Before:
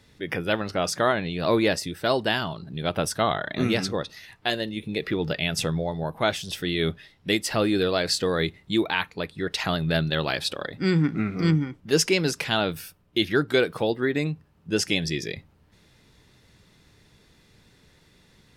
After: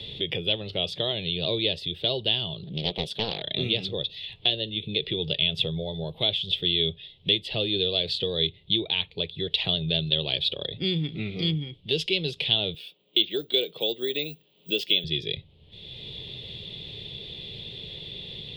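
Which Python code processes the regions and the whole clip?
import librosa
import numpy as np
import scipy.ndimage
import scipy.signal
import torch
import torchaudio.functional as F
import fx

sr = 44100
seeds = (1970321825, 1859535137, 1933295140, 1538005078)

y = fx.chain(x, sr, fx.low_shelf_res(hz=120.0, db=-11.5, q=1.5),
    fx.doppler_dist(depth_ms=0.82), at=(2.63, 3.42))
y = fx.chain(y, sr, fx.resample_bad(factor=2, down='filtered', up='zero_stuff'),
    fx.highpass(hz=240.0, slope=24), at=(12.74, 15.04))
y = fx.curve_eq(y, sr, hz=(140.0, 270.0, 400.0, 560.0, 1500.0, 3400.0, 5900.0), db=(0, -12, -1, -4, -24, 13, -21))
y = fx.band_squash(y, sr, depth_pct=70)
y = y * librosa.db_to_amplitude(-2.0)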